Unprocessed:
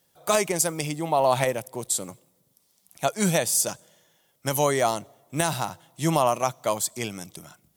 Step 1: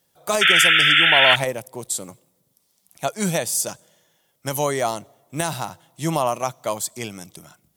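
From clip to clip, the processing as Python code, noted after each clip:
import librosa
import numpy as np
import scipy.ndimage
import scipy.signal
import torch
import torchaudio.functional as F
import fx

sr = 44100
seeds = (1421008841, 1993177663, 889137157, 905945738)

y = fx.spec_paint(x, sr, seeds[0], shape='noise', start_s=0.41, length_s=0.95, low_hz=1300.0, high_hz=3600.0, level_db=-15.0)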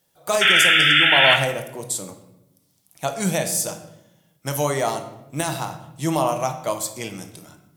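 y = fx.room_shoebox(x, sr, seeds[1], volume_m3=310.0, walls='mixed', distance_m=0.59)
y = y * librosa.db_to_amplitude(-1.0)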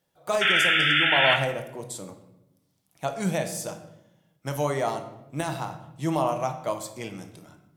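y = fx.high_shelf(x, sr, hz=4300.0, db=-10.5)
y = y * librosa.db_to_amplitude(-3.5)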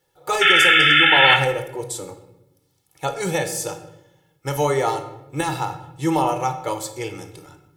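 y = x + 0.99 * np.pad(x, (int(2.3 * sr / 1000.0), 0))[:len(x)]
y = y * librosa.db_to_amplitude(4.0)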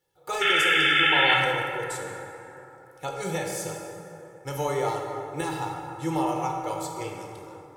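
y = fx.rev_plate(x, sr, seeds[2], rt60_s=3.3, hf_ratio=0.45, predelay_ms=0, drr_db=1.5)
y = y * librosa.db_to_amplitude(-8.5)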